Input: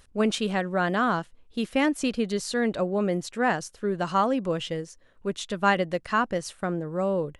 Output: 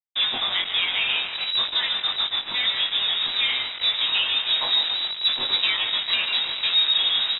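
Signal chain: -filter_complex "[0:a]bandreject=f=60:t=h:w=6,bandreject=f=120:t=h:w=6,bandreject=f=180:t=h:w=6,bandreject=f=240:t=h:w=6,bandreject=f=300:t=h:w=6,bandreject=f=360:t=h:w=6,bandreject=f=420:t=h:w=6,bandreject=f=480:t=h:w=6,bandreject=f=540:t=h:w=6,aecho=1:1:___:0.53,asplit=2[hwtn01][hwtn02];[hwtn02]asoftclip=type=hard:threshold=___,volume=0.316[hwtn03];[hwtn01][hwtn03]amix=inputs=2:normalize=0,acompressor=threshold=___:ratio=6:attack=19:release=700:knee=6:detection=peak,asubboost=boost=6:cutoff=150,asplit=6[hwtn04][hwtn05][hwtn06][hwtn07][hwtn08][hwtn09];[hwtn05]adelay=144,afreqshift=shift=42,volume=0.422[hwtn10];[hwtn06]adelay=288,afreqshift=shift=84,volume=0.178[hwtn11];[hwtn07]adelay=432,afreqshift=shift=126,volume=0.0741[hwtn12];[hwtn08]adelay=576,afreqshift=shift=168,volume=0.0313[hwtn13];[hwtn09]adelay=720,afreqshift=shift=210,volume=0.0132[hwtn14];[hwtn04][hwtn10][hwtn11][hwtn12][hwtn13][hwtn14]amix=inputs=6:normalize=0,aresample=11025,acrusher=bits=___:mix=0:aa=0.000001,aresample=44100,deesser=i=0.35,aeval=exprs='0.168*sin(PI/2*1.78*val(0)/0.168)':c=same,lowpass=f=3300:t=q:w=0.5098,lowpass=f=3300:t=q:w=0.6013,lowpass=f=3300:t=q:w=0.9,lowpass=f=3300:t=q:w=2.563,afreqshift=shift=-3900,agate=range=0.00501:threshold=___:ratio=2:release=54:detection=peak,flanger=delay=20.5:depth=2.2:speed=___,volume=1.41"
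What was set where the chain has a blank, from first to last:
7.4, 0.126, 0.0355, 5, 0.0501, 0.53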